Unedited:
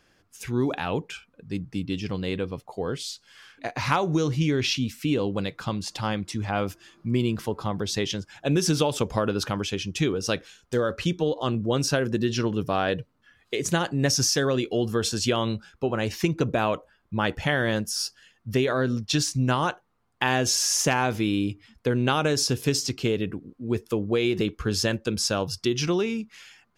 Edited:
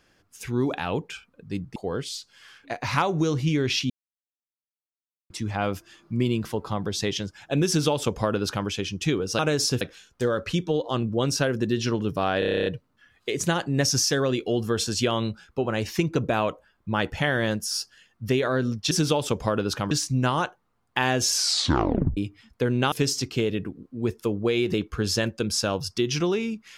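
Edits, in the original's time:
0:01.76–0:02.70: remove
0:04.84–0:06.24: silence
0:08.61–0:09.61: duplicate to 0:19.16
0:12.91: stutter 0.03 s, 10 plays
0:20.59: tape stop 0.83 s
0:22.17–0:22.59: move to 0:10.33

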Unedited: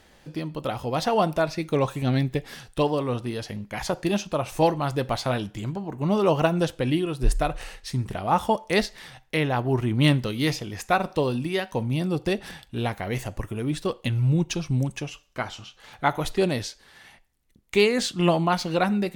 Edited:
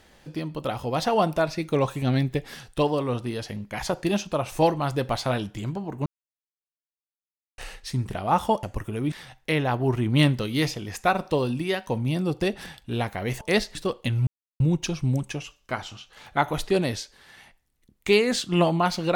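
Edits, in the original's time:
0:06.06–0:07.58: silence
0:08.63–0:08.97: swap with 0:13.26–0:13.75
0:14.27: splice in silence 0.33 s

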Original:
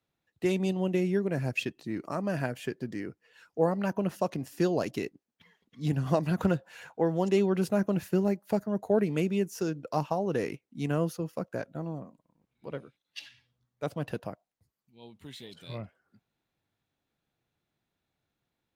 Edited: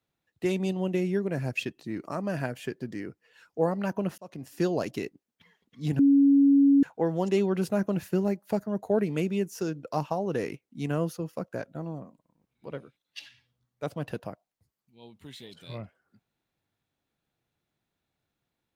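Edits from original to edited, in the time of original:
0:04.18–0:04.57: fade in
0:05.99–0:06.83: beep over 279 Hz −15.5 dBFS

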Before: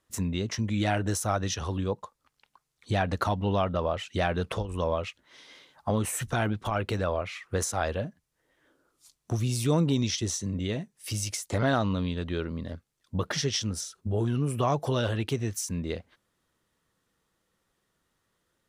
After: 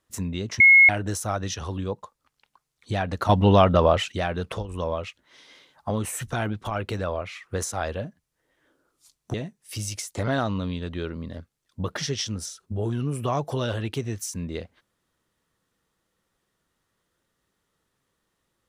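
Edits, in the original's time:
0:00.60–0:00.89: beep over 2,170 Hz −9.5 dBFS
0:03.29–0:04.12: clip gain +10 dB
0:09.34–0:10.69: remove

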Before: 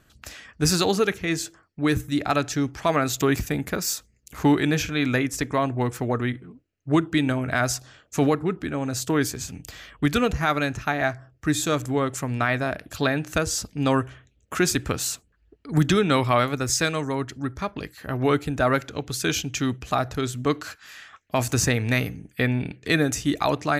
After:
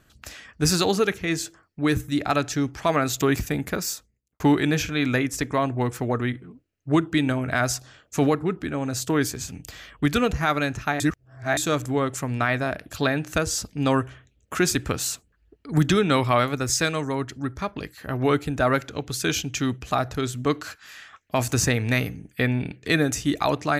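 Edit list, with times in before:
0:03.77–0:04.40: fade out and dull
0:11.00–0:11.57: reverse

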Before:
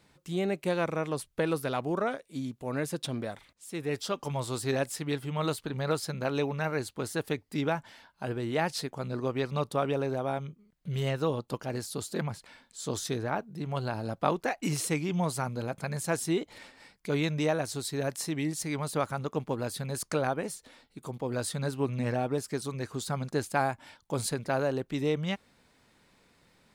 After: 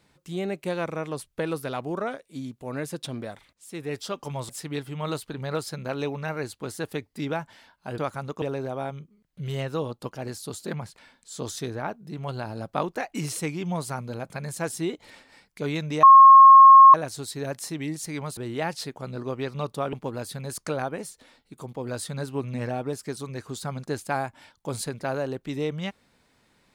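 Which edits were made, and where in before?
0:04.49–0:04.85: remove
0:08.34–0:09.90: swap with 0:18.94–0:19.38
0:17.51: insert tone 1,080 Hz −6.5 dBFS 0.91 s

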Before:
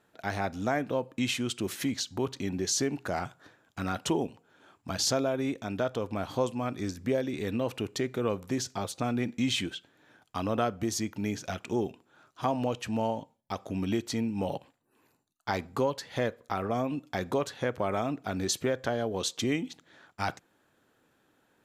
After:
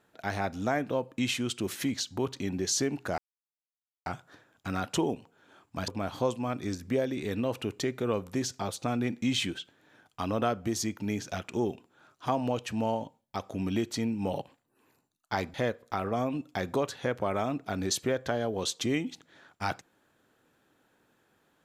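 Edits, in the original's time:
0:03.18: splice in silence 0.88 s
0:05.00–0:06.04: remove
0:15.70–0:16.12: remove

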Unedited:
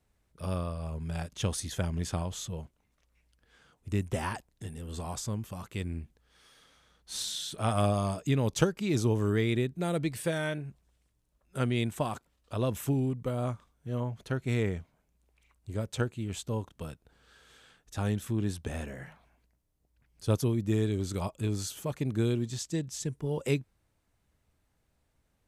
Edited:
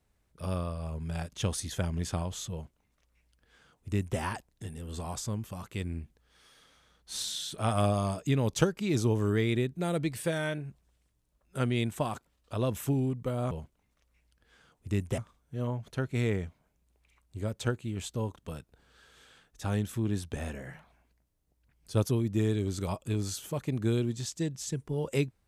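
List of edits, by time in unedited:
0:02.52–0:04.19: duplicate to 0:13.51

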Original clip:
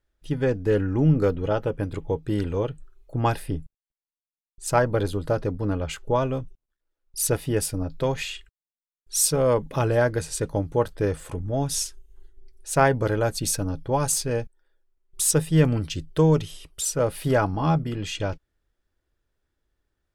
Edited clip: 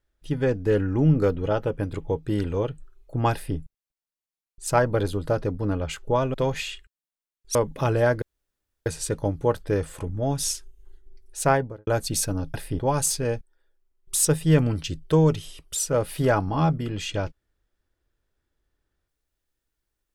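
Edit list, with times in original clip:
0:03.32–0:03.57: duplicate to 0:13.85
0:06.34–0:07.96: remove
0:09.17–0:09.50: remove
0:10.17: splice in room tone 0.64 s
0:12.72–0:13.18: fade out and dull

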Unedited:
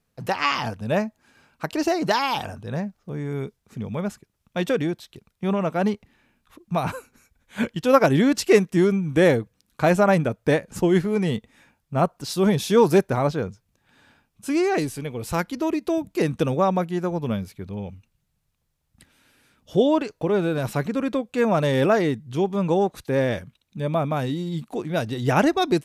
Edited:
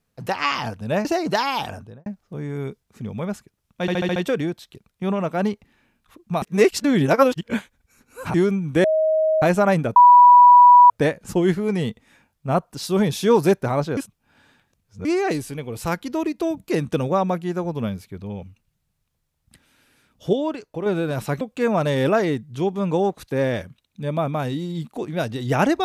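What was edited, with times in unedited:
0:01.05–0:01.81: remove
0:02.51–0:02.82: fade out and dull
0:04.57: stutter 0.07 s, 6 plays
0:06.83–0:08.75: reverse
0:09.25–0:09.83: beep over 630 Hz −15.5 dBFS
0:10.37: insert tone 979 Hz −6 dBFS 0.94 s
0:13.44–0:14.52: reverse
0:19.80–0:20.33: clip gain −5 dB
0:20.88–0:21.18: remove

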